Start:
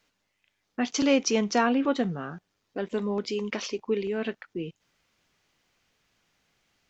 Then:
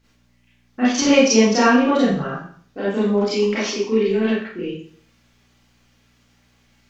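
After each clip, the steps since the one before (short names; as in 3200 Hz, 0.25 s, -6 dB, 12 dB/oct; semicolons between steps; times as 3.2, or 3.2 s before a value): hum 60 Hz, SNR 32 dB; Schroeder reverb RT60 0.52 s, combs from 28 ms, DRR -10 dB; gain -1 dB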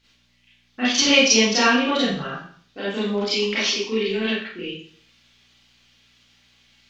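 bell 3500 Hz +15 dB 1.7 oct; gain -6 dB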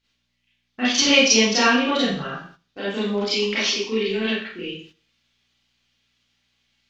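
gate -46 dBFS, range -11 dB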